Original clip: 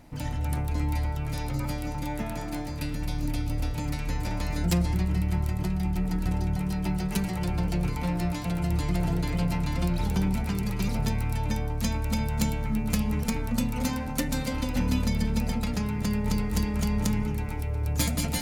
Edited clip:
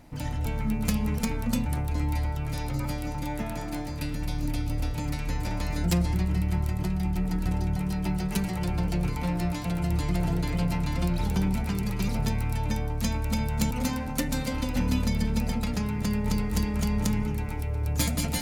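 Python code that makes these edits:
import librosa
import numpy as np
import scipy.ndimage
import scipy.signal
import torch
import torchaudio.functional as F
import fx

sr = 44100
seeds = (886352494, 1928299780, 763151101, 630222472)

y = fx.edit(x, sr, fx.move(start_s=12.51, length_s=1.2, to_s=0.46), tone=tone)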